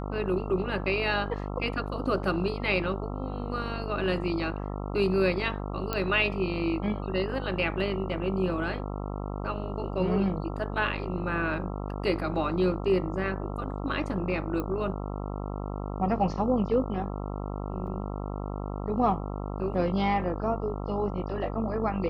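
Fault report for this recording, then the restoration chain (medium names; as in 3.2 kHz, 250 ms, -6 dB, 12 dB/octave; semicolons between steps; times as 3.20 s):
buzz 50 Hz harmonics 27 -34 dBFS
5.93 s: pop -14 dBFS
14.60 s: pop -20 dBFS
17.87 s: dropout 4 ms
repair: de-click; de-hum 50 Hz, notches 27; interpolate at 17.87 s, 4 ms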